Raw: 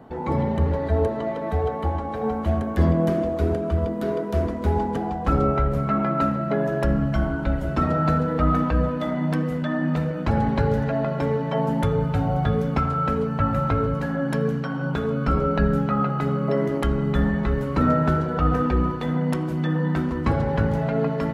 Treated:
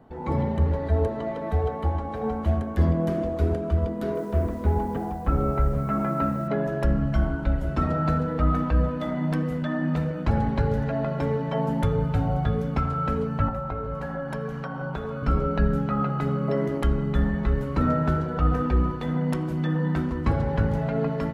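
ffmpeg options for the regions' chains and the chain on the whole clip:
-filter_complex "[0:a]asettb=1/sr,asplit=3[a][b][c];[a]atrim=end=4.154[d];[b]atrim=start=4.15:end=6.48,asetpts=PTS-STARTPTS,afade=t=in:d=0.004:c=qsin,afade=t=out:st=2.326:d=0.004:c=qsin,lowpass=2.4k,acrusher=bits=7:mix=0:aa=0.5[e];[c]atrim=start=6.476[f];[d][e]acrossfade=d=0.004:c1=hsin:c2=qsin[g];[g][f]acrossfade=d=0.004:c1=qsin:c2=hsin,asettb=1/sr,asplit=3[h][i][j];[h]atrim=end=13.484[k];[i]atrim=start=13.48:end=15.23,asetpts=PTS-STARTPTS,afade=t=in:d=0.004:c=qsin,afade=t=out:st=1.746:d=0.004:c=qsin,equalizer=f=750:w=0.68:g=10,aecho=1:1:5.2:0.3,atrim=end_sample=77175,acrossover=split=110|880[l][m][n];[l]acompressor=threshold=-35dB:ratio=4[o];[m]acompressor=threshold=-32dB:ratio=4[p];[n]acompressor=threshold=-35dB:ratio=4[q];[o][p][q]amix=inputs=3:normalize=0[r];[j]atrim=start=15.226[s];[k][r]acrossfade=d=0.004:c1=hsin:c2=qsin[t];[t][s]acrossfade=d=0.004:c1=qsin:c2=hsin,lowshelf=f=63:g=10.5,dynaudnorm=f=140:g=3:m=5dB,volume=-8dB"

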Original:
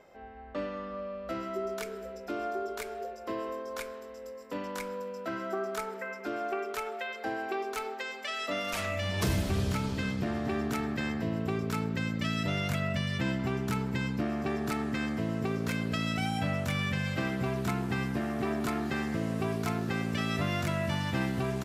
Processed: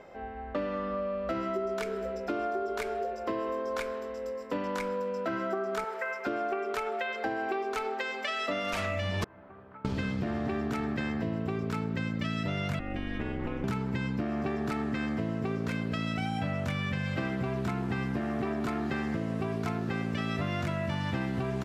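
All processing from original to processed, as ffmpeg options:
-filter_complex "[0:a]asettb=1/sr,asplit=3[a][b][c];[a]atrim=end=5.844[d];[b]atrim=start=5.84:end=6.27,asetpts=PTS-STARTPTS,afade=t=in:d=0.004:c=qsin,afade=t=out:st=0.426:d=0.004:c=qsin,highpass=560,acrusher=bits=7:mode=log:mix=0:aa=0.000001[e];[c]atrim=start=6.266[f];[d][e]acrossfade=d=0.004:c1=hsin:c2=qsin[g];[g][f]acrossfade=d=0.004:c1=qsin:c2=hsin,asettb=1/sr,asplit=3[h][i][j];[h]atrim=end=9.244[k];[i]atrim=start=9.24:end=9.85,asetpts=PTS-STARTPTS,afade=t=in:d=0.004:c=qsin,afade=t=out:st=0.606:d=0.004:c=qsin,lowpass=f=1.3k:w=0.5412,lowpass=f=1.3k:w=1.3066,aderivative[l];[j]atrim=start=9.846[m];[k][l]acrossfade=d=0.004:c1=hsin:c2=qsin[n];[n][m]acrossfade=d=0.004:c1=qsin:c2=hsin,asettb=1/sr,asplit=3[o][p][q];[o]atrim=end=12.794[r];[p]atrim=start=12.79:end=13.64,asetpts=PTS-STARTPTS,afade=t=in:d=0.004:c=qsin,afade=t=out:st=0.846:d=0.004:c=qsin,highshelf=f=3.5k:t=q:w=1.5:g=-9,acrossover=split=570|1800|3700[s][t][u][v];[s]acompressor=threshold=-34dB:ratio=3[w];[t]acompressor=threshold=-47dB:ratio=3[x];[u]acompressor=threshold=-55dB:ratio=3[y];[v]acompressor=threshold=-56dB:ratio=3[z];[w][x][y][z]amix=inputs=4:normalize=0,aeval=exprs='val(0)*sin(2*PI*110*n/s)':c=same[aa];[q]atrim=start=13.636[ab];[r][aa]acrossfade=d=0.004:c1=hsin:c2=qsin[ac];[ac][ab]acrossfade=d=0.004:c1=qsin:c2=hsin,aemphasis=mode=reproduction:type=50kf,acompressor=threshold=-36dB:ratio=6,volume=7.5dB"

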